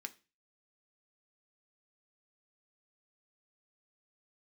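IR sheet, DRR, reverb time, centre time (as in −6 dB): 6.5 dB, 0.30 s, 3 ms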